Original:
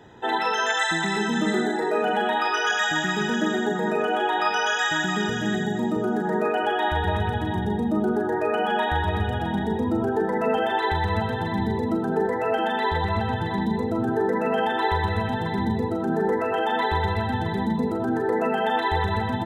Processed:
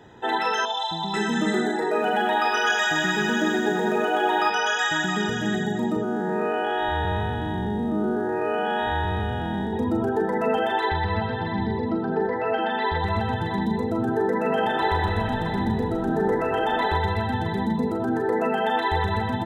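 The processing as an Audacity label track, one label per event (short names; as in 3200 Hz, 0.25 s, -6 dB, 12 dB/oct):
0.650000	1.140000	EQ curve 140 Hz 0 dB, 330 Hz -9 dB, 560 Hz -5 dB, 940 Hz +4 dB, 1600 Hz -24 dB, 2200 Hz -25 dB, 3400 Hz +3 dB, 6600 Hz -15 dB, 9900 Hz -29 dB
1.860000	4.500000	lo-fi delay 0.1 s, feedback 80%, word length 8-bit, level -10.5 dB
6.030000	9.730000	time blur width 0.141 s
10.890000	13.040000	elliptic low-pass 5000 Hz
14.300000	16.970000	frequency-shifting echo 0.158 s, feedback 57%, per repeat -46 Hz, level -12 dB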